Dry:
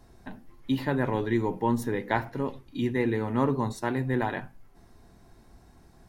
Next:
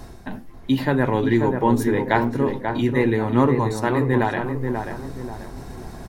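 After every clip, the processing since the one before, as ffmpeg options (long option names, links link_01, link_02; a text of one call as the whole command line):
ffmpeg -i in.wav -filter_complex "[0:a]areverse,acompressor=mode=upward:threshold=-32dB:ratio=2.5,areverse,asplit=2[link_01][link_02];[link_02]adelay=537,lowpass=frequency=1500:poles=1,volume=-5dB,asplit=2[link_03][link_04];[link_04]adelay=537,lowpass=frequency=1500:poles=1,volume=0.4,asplit=2[link_05][link_06];[link_06]adelay=537,lowpass=frequency=1500:poles=1,volume=0.4,asplit=2[link_07][link_08];[link_08]adelay=537,lowpass=frequency=1500:poles=1,volume=0.4,asplit=2[link_09][link_10];[link_10]adelay=537,lowpass=frequency=1500:poles=1,volume=0.4[link_11];[link_01][link_03][link_05][link_07][link_09][link_11]amix=inputs=6:normalize=0,volume=7dB" out.wav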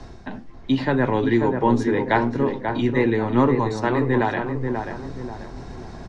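ffmpeg -i in.wav -filter_complex "[0:a]lowpass=frequency=6400:width=0.5412,lowpass=frequency=6400:width=1.3066,acrossover=split=190|600|1800[link_01][link_02][link_03][link_04];[link_01]aeval=exprs='clip(val(0),-1,0.0188)':channel_layout=same[link_05];[link_05][link_02][link_03][link_04]amix=inputs=4:normalize=0" out.wav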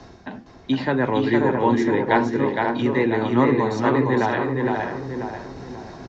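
ffmpeg -i in.wav -af "highpass=frequency=140:poles=1,aecho=1:1:462:0.631,aresample=16000,aresample=44100" out.wav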